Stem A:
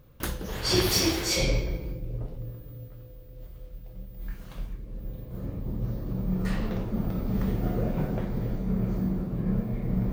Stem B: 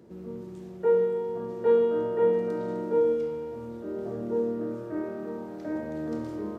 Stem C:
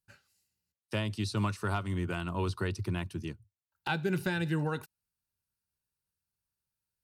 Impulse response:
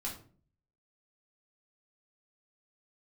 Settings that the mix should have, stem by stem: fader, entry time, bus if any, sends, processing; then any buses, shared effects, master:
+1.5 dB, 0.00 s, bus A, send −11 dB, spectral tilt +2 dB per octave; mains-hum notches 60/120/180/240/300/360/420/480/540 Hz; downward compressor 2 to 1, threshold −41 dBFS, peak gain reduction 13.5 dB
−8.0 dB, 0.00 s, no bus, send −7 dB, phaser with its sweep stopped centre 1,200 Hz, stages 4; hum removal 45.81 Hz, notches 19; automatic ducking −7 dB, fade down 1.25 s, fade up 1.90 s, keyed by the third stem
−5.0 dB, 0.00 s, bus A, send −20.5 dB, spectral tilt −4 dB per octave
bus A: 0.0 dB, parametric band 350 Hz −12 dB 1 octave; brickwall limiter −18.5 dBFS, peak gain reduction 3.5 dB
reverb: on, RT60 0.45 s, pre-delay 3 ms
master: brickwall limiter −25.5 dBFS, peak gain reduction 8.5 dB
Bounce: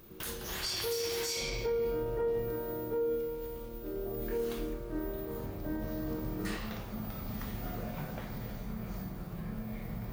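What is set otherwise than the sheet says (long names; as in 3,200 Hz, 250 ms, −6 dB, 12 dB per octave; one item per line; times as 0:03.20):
stem B: missing phaser with its sweep stopped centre 1,200 Hz, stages 4
stem C: muted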